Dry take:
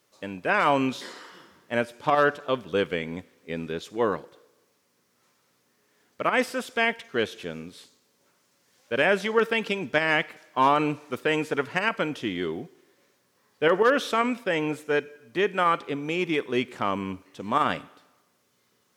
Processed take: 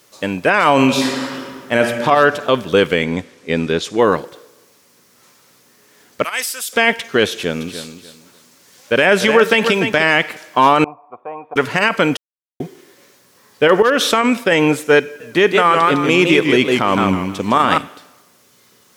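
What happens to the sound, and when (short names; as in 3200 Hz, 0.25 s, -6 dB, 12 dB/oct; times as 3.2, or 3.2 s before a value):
0.73–1.79 reverb throw, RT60 1.9 s, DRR 5 dB
3.04–3.99 LPF 9000 Hz
6.24–6.73 differentiator
7.31–10.03 feedback echo 0.295 s, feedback 24%, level -11 dB
10.84–11.56 vocal tract filter a
12.17–12.6 mute
13.82–14.52 compressor 10:1, threshold -23 dBFS
15.04–17.78 warbling echo 0.159 s, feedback 32%, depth 142 cents, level -5.5 dB
whole clip: high shelf 4100 Hz +5 dB; maximiser +15 dB; gain -1 dB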